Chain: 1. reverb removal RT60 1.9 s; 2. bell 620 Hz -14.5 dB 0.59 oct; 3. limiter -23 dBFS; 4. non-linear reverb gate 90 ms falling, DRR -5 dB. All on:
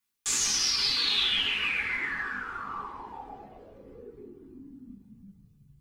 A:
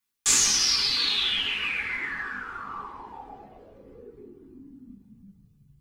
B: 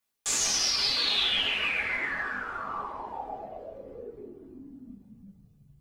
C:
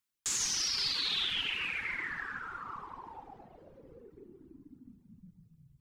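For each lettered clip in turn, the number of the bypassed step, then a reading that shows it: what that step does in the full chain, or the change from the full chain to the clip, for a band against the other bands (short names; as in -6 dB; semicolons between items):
3, crest factor change +4.5 dB; 2, 500 Hz band +6.0 dB; 4, momentary loudness spread change -1 LU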